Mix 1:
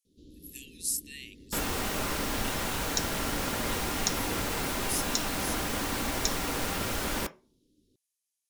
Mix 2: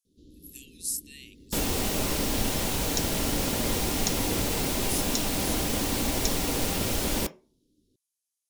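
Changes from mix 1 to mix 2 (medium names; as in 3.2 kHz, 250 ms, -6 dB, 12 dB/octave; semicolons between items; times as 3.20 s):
first sound +5.5 dB; master: add peaking EQ 1.4 kHz -10 dB 1.4 oct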